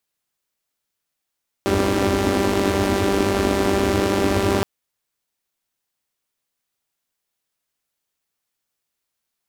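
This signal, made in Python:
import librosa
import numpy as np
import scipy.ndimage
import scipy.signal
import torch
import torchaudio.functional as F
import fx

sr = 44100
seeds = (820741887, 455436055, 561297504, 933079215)

y = fx.engine_four(sr, seeds[0], length_s=2.97, rpm=5900, resonances_hz=(87.0, 280.0))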